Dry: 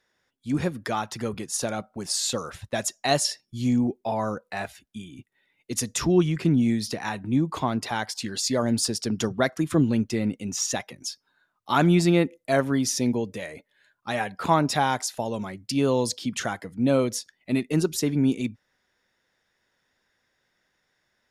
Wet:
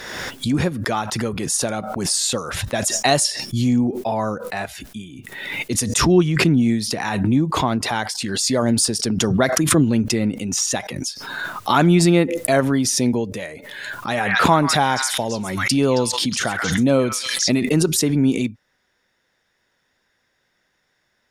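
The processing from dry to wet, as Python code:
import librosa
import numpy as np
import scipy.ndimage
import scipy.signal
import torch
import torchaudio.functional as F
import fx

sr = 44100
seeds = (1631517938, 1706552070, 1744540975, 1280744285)

y = fx.echo_stepped(x, sr, ms=135, hz=1700.0, octaves=1.4, feedback_pct=70, wet_db=-3.0, at=(14.12, 17.53), fade=0.02)
y = fx.dynamic_eq(y, sr, hz=8800.0, q=5.0, threshold_db=-50.0, ratio=4.0, max_db=6)
y = fx.pre_swell(y, sr, db_per_s=36.0)
y = y * 10.0 ** (4.5 / 20.0)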